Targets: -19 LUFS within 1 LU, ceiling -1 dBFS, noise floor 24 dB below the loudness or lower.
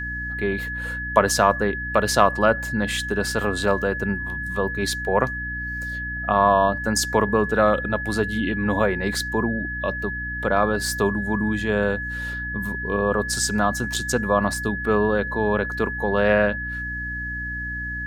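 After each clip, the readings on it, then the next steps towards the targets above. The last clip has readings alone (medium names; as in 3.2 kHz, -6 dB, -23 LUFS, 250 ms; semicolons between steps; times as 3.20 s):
hum 60 Hz; highest harmonic 300 Hz; hum level -31 dBFS; steady tone 1.7 kHz; tone level -28 dBFS; loudness -22.5 LUFS; peak level -1.5 dBFS; loudness target -19.0 LUFS
-> hum notches 60/120/180/240/300 Hz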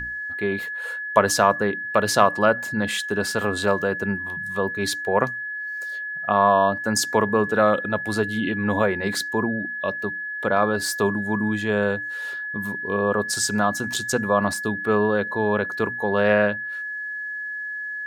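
hum not found; steady tone 1.7 kHz; tone level -28 dBFS
-> band-stop 1.7 kHz, Q 30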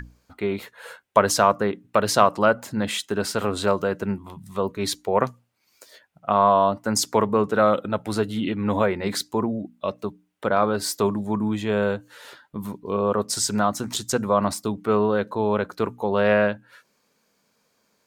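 steady tone not found; loudness -23.0 LUFS; peak level -2.0 dBFS; loudness target -19.0 LUFS
-> trim +4 dB; peak limiter -1 dBFS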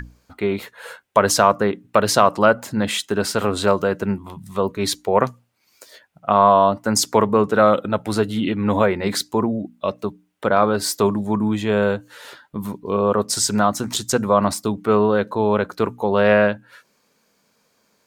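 loudness -19.5 LUFS; peak level -1.0 dBFS; noise floor -65 dBFS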